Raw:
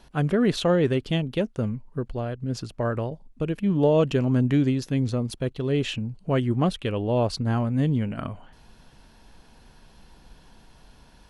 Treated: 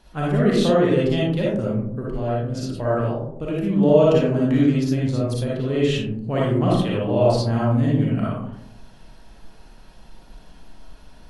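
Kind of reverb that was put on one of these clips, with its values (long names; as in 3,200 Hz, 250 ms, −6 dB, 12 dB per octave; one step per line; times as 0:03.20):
comb and all-pass reverb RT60 0.78 s, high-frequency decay 0.3×, pre-delay 15 ms, DRR −6 dB
level −3 dB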